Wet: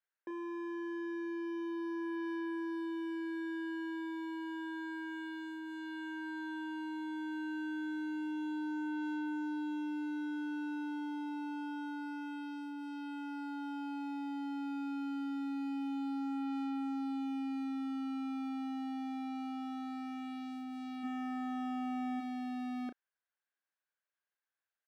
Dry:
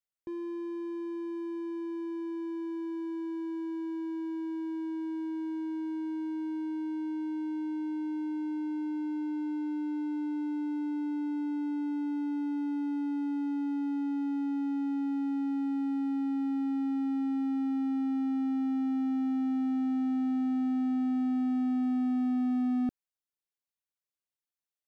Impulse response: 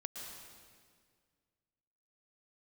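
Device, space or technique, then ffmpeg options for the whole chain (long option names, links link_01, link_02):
megaphone: -filter_complex "[0:a]asplit=3[link_01][link_02][link_03];[link_01]afade=type=out:start_time=21.03:duration=0.02[link_04];[link_02]aemphasis=mode=reproduction:type=bsi,afade=type=in:start_time=21.03:duration=0.02,afade=type=out:start_time=22.19:duration=0.02[link_05];[link_03]afade=type=in:start_time=22.19:duration=0.02[link_06];[link_04][link_05][link_06]amix=inputs=3:normalize=0,highpass=480,lowpass=2600,equalizer=frequency=1600:width_type=o:width=0.29:gain=12,asoftclip=type=hard:threshold=-38dB,asplit=2[link_07][link_08];[link_08]adelay=33,volume=-9.5dB[link_09];[link_07][link_09]amix=inputs=2:normalize=0,volume=2.5dB"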